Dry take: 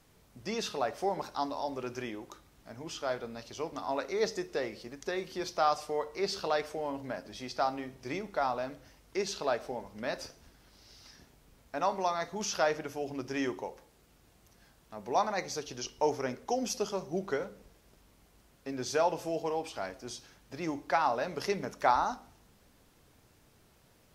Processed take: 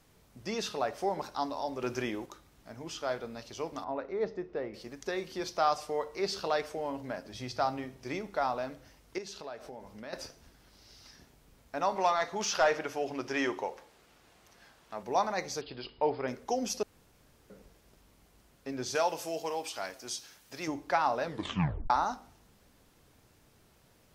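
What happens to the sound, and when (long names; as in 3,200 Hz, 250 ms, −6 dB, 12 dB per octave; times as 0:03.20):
0:01.82–0:02.26: clip gain +4.5 dB
0:03.84–0:04.74: head-to-tape spacing loss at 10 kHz 41 dB
0:07.33–0:07.85: parametric band 110 Hz +13.5 dB 0.57 octaves
0:09.18–0:10.13: downward compressor 2.5 to 1, threshold −44 dBFS
0:11.96–0:15.03: mid-hump overdrive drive 12 dB, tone 3,700 Hz, clips at −14.5 dBFS
0:15.61–0:16.28: Chebyshev low-pass filter 5,000 Hz, order 10
0:16.83–0:17.50: fill with room tone
0:18.95–0:20.68: spectral tilt +2.5 dB per octave
0:21.23: tape stop 0.67 s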